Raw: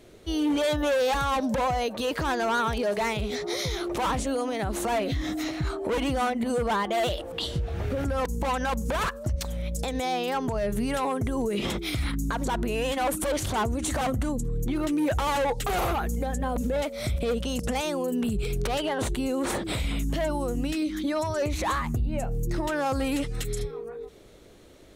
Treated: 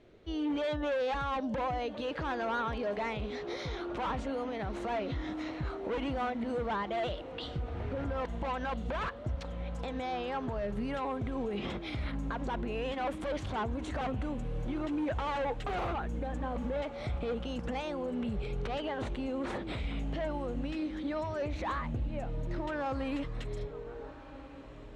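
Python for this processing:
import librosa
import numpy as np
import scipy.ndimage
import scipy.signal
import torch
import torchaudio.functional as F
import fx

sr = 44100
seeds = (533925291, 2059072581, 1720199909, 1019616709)

y = scipy.signal.sosfilt(scipy.signal.butter(2, 3200.0, 'lowpass', fs=sr, output='sos'), x)
y = fx.echo_diffused(y, sr, ms=1382, feedback_pct=56, wet_db=-15.0)
y = F.gain(torch.from_numpy(y), -7.5).numpy()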